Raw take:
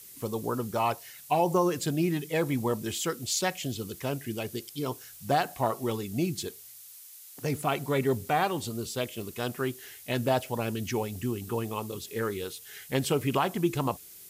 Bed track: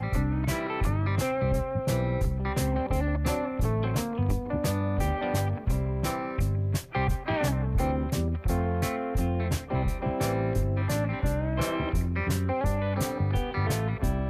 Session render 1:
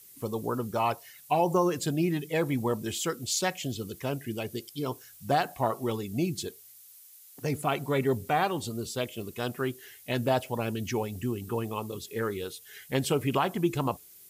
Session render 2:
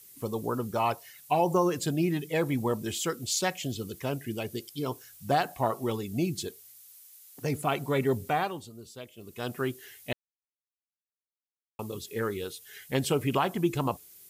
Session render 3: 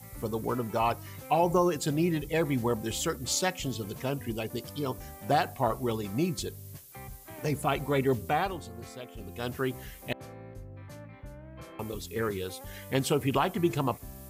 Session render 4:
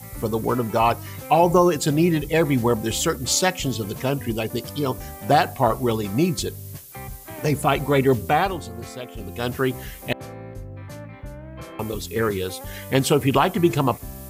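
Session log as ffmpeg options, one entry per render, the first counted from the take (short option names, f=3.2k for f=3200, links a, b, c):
-af "afftdn=nr=6:nf=-49"
-filter_complex "[0:a]asplit=5[a][b][c][d][e];[a]atrim=end=8.67,asetpts=PTS-STARTPTS,afade=t=out:st=8.27:d=0.4:silence=0.251189[f];[b]atrim=start=8.67:end=9.17,asetpts=PTS-STARTPTS,volume=-12dB[g];[c]atrim=start=9.17:end=10.13,asetpts=PTS-STARTPTS,afade=t=in:d=0.4:silence=0.251189,afade=t=out:st=0.956:d=0.004:c=hsin[h];[d]atrim=start=10.13:end=11.79,asetpts=PTS-STARTPTS,volume=0[i];[e]atrim=start=11.79,asetpts=PTS-STARTPTS,afade=t=in:d=0.004:c=hsin[j];[f][g][h][i][j]concat=n=5:v=0:a=1"
-filter_complex "[1:a]volume=-18.5dB[a];[0:a][a]amix=inputs=2:normalize=0"
-af "volume=8.5dB"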